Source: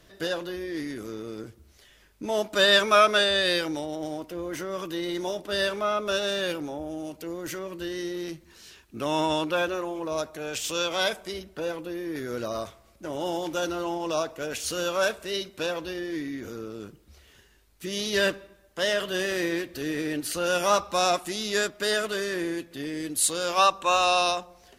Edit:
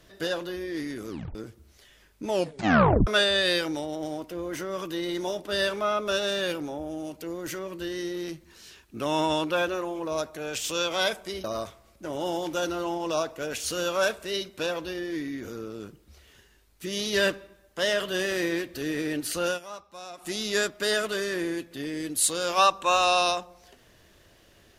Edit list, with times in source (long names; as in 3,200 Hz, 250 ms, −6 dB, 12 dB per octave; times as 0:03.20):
0:01.09: tape stop 0.26 s
0:02.29: tape stop 0.78 s
0:11.44–0:12.44: remove
0:20.47–0:21.30: duck −18.5 dB, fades 0.13 s